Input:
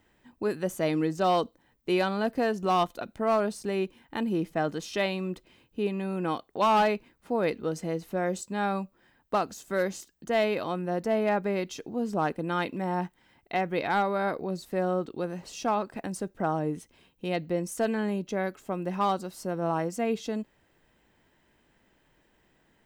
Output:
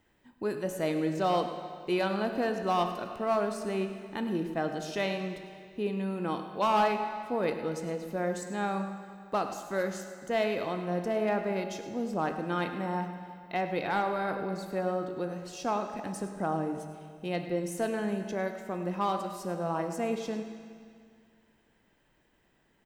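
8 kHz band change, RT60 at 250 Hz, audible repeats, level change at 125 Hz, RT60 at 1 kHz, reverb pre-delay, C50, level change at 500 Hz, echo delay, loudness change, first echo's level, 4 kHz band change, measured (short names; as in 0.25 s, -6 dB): -2.5 dB, 2.2 s, 1, -2.5 dB, 2.2 s, 18 ms, 6.5 dB, -2.5 dB, 0.102 s, -2.5 dB, -15.5 dB, -2.5 dB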